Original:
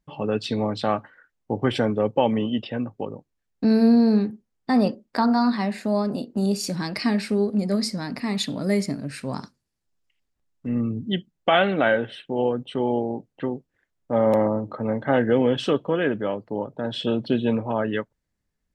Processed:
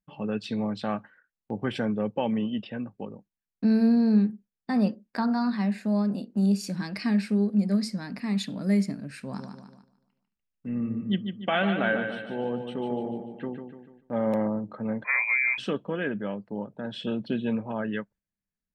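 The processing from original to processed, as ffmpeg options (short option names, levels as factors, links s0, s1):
-filter_complex "[0:a]asettb=1/sr,asplit=3[s0][s1][s2];[s0]atrim=end=9.214[s3];[s1]atrim=start=9.21:end=14.15,asetpts=PTS-STARTPTS,afade=t=in:d=0.004:c=qsin,afade=t=out:st=4.936:d=0.004:c=qsin,aecho=1:1:147|294|441|588|735|882:0.447|0.21|0.0987|0.0464|0.0218|0.0102,atrim=end_sample=217854[s4];[s2]atrim=start=14.146[s5];[s3][s4]acrossfade=d=0.004:c1=hsin:c2=qsin[s6];[s6][s5]acrossfade=d=0.004:c1=qsin:c2=hsin,asettb=1/sr,asplit=3[s7][s8][s9];[s7]atrim=end=15.044[s10];[s8]atrim=start=15.04:end=15.58,asetpts=PTS-STARTPTS,afade=t=in:d=0.004:c=qsin,afade=t=out:st=0.536:d=0.004:c=qsin,lowpass=f=2200:t=q:w=0.5098,lowpass=f=2200:t=q:w=0.6013,lowpass=f=2200:t=q:w=0.9,lowpass=f=2200:t=q:w=2.563,afreqshift=-2600[s11];[s9]atrim=start=15.576[s12];[s10][s11]acrossfade=d=0.004:c1=hsin:c2=qsin[s13];[s13][s12]acrossfade=d=0.004:c1=qsin:c2=hsin,agate=range=0.447:threshold=0.00398:ratio=16:detection=peak,equalizer=f=200:t=o:w=0.33:g=10,equalizer=f=1600:t=o:w=0.33:g=5,equalizer=f=2500:t=o:w=0.33:g=4,volume=0.376"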